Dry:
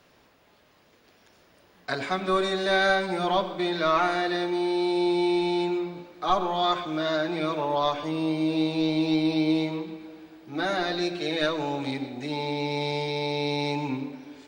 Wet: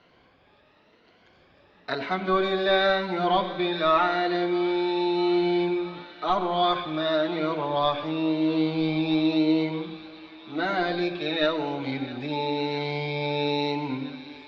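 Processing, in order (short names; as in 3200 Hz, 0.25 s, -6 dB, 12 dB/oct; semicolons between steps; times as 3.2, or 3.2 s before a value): moving spectral ripple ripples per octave 1.9, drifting +0.94 Hz, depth 9 dB; LPF 4200 Hz 24 dB/oct; thin delay 0.659 s, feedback 77%, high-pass 1600 Hz, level -16 dB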